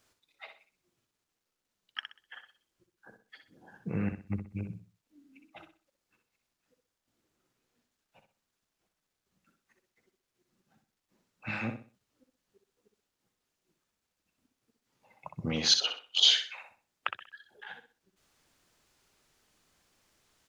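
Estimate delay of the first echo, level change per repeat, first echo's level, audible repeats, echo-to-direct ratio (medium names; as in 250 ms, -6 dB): 63 ms, -10.5 dB, -8.0 dB, 3, -7.5 dB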